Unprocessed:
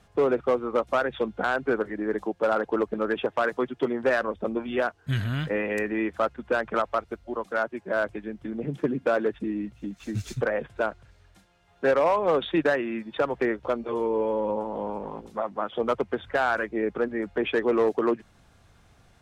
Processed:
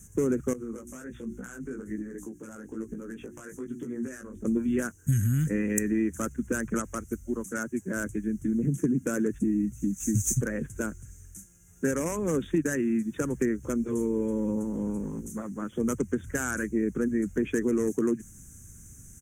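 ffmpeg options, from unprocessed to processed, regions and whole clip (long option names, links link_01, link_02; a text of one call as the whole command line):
ffmpeg -i in.wav -filter_complex "[0:a]asettb=1/sr,asplit=3[link_01][link_02][link_03];[link_01]atrim=end=0.534[link_04];[link_02]atrim=start=0.53:end=4.45,asetpts=PTS-STARTPTS,afade=type=in:duration=0.004:curve=qsin,afade=type=out:start_time=3.916:duration=0.004:curve=qsin,bandreject=frequency=60:width_type=h:width=6,bandreject=frequency=120:width_type=h:width=6,bandreject=frequency=180:width_type=h:width=6,bandreject=frequency=240:width_type=h:width=6,bandreject=frequency=300:width_type=h:width=6,bandreject=frequency=360:width_type=h:width=6,acompressor=threshold=-31dB:ratio=6:attack=3.2:release=140:knee=1:detection=peak,flanger=delay=16.5:depth=3.4:speed=1.2[link_05];[link_03]atrim=start=4.446[link_06];[link_04][link_05]acrossfade=duration=0.004:curve1=hsin:curve2=qsin[link_07];[link_07][link_06]acrossfade=duration=0.004:curve1=qsin:curve2=hsin,firequalizer=gain_entry='entry(240,0);entry(690,-28);entry(1600,-12);entry(4300,-28);entry(6200,14)':delay=0.05:min_phase=1,acompressor=threshold=-30dB:ratio=6,volume=8.5dB" out.wav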